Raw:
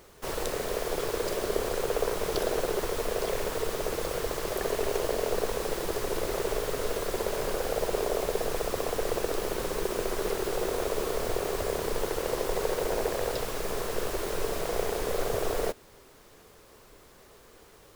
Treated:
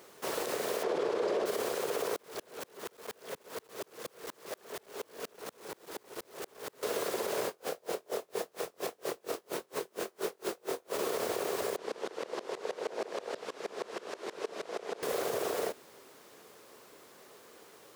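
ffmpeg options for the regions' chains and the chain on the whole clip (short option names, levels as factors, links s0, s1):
-filter_complex "[0:a]asettb=1/sr,asplit=3[s0][s1][s2];[s0]atrim=end=0.834[s3];[s1]atrim=start=0.83:end=1.46,asetpts=PTS-STARTPTS,afade=t=in:d=0.004:c=qsin,afade=t=out:st=0.626:d=0.004:c=qsin,lowpass=5000,equalizer=f=470:w=0.47:g=9.5[s4];[s2]atrim=start=1.456[s5];[s3][s4]acrossfade=d=0.004:c1=hsin:c2=qsin[s6];[s6][s5]acrossfade=d=0.004:c1=qsin:c2=hsin,asettb=1/sr,asplit=3[s7][s8][s9];[s7]atrim=end=2.164[s10];[s8]atrim=start=2.16:end=6.83,asetpts=PTS-STARTPTS,afade=t=in:d=0.004:c=qsin,afade=t=out:st=4.666:d=0.004:c=qsin,asoftclip=type=hard:threshold=0.0266,aeval=exprs='val(0)*pow(10,-34*if(lt(mod(-4.2*n/s,1),2*abs(-4.2)/1000),1-mod(-4.2*n/s,1)/(2*abs(-4.2)/1000),(mod(-4.2*n/s,1)-2*abs(-4.2)/1000)/(1-2*abs(-4.2)/1000))/20)':c=same[s11];[s9]atrim=start=6.826[s12];[s10][s11]acrossfade=d=0.004:c1=hsin:c2=qsin[s13];[s13][s12]acrossfade=d=0.004:c1=qsin:c2=hsin,asettb=1/sr,asplit=3[s14][s15][s16];[s14]atrim=end=7.464[s17];[s15]atrim=start=7.46:end=10.99,asetpts=PTS-STARTPTS,afade=t=in:d=0.004:c=qsin,afade=t=out:st=3.526:d=0.004:c=qsin,asplit=2[s18][s19];[s19]adelay=23,volume=0.631[s20];[s18][s20]amix=inputs=2:normalize=0,atrim=end_sample=155673,aeval=exprs='val(0)*pow(10,-40*(0.5-0.5*cos(2*PI*4.3*n/s))/20)':c=same[s21];[s16]atrim=start=10.986[s22];[s17][s21]acrossfade=d=0.004:c1=hsin:c2=qsin[s23];[s23][s22]acrossfade=d=0.004:c1=qsin:c2=hsin,asettb=1/sr,asplit=3[s24][s25][s26];[s24]atrim=end=11.764[s27];[s25]atrim=start=11.76:end=15.03,asetpts=PTS-STARTPTS,afade=t=in:d=0.004:c=qsin,afade=t=out:st=3.266:d=0.004:c=qsin,highpass=190,lowpass=5600,aeval=exprs='val(0)*pow(10,-22*if(lt(mod(-6.3*n/s,1),2*abs(-6.3)/1000),1-mod(-6.3*n/s,1)/(2*abs(-6.3)/1000),(mod(-6.3*n/s,1)-2*abs(-6.3)/1000)/(1-2*abs(-6.3)/1000))/20)':c=same[s28];[s26]atrim=start=15.026[s29];[s27][s28]acrossfade=d=0.004:c1=hsin:c2=qsin[s30];[s30][s29]acrossfade=d=0.004:c1=qsin:c2=hsin,highpass=220,alimiter=limit=0.0708:level=0:latency=1:release=48"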